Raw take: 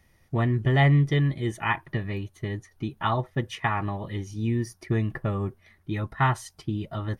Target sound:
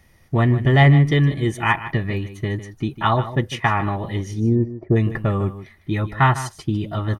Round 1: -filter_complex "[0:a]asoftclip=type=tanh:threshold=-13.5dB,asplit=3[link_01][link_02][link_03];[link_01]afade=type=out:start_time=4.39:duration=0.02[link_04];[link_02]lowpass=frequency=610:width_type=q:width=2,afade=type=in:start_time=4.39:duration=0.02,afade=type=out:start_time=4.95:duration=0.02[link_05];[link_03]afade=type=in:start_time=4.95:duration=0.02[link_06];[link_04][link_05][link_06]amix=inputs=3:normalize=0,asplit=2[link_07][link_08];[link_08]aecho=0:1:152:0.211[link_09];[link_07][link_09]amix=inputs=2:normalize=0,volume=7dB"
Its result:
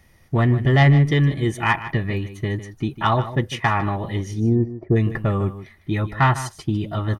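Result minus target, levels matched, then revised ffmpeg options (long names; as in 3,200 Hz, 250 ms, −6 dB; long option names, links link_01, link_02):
soft clipping: distortion +15 dB
-filter_complex "[0:a]asoftclip=type=tanh:threshold=-4.5dB,asplit=3[link_01][link_02][link_03];[link_01]afade=type=out:start_time=4.39:duration=0.02[link_04];[link_02]lowpass=frequency=610:width_type=q:width=2,afade=type=in:start_time=4.39:duration=0.02,afade=type=out:start_time=4.95:duration=0.02[link_05];[link_03]afade=type=in:start_time=4.95:duration=0.02[link_06];[link_04][link_05][link_06]amix=inputs=3:normalize=0,asplit=2[link_07][link_08];[link_08]aecho=0:1:152:0.211[link_09];[link_07][link_09]amix=inputs=2:normalize=0,volume=7dB"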